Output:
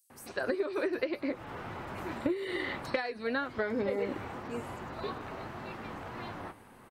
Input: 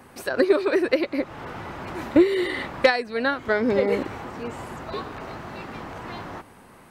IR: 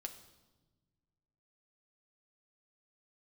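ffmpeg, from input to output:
-filter_complex "[0:a]flanger=delay=7.8:depth=2.6:regen=-56:speed=1.8:shape=sinusoidal,acrossover=split=5800[s0][s1];[s0]adelay=100[s2];[s2][s1]amix=inputs=2:normalize=0,acompressor=threshold=0.0501:ratio=10,volume=0.841"

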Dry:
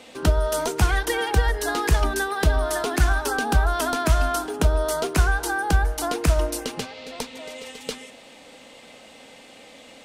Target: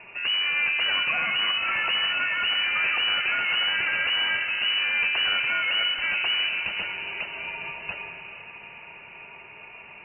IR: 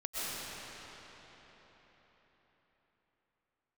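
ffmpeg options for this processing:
-filter_complex "[0:a]asoftclip=type=hard:threshold=0.0562,asplit=2[s0][s1];[1:a]atrim=start_sample=2205[s2];[s1][s2]afir=irnorm=-1:irlink=0,volume=0.355[s3];[s0][s3]amix=inputs=2:normalize=0,lowpass=f=2600:t=q:w=0.5098,lowpass=f=2600:t=q:w=0.6013,lowpass=f=2600:t=q:w=0.9,lowpass=f=2600:t=q:w=2.563,afreqshift=-3000"

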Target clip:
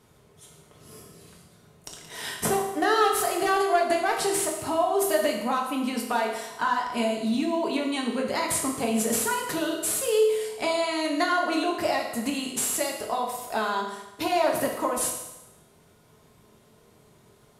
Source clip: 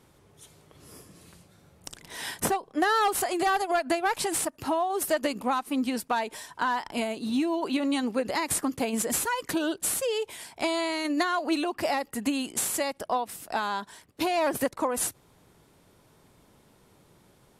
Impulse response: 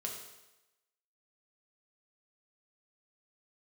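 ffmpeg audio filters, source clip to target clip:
-filter_complex "[1:a]atrim=start_sample=2205[s0];[0:a][s0]afir=irnorm=-1:irlink=0,volume=1.26"

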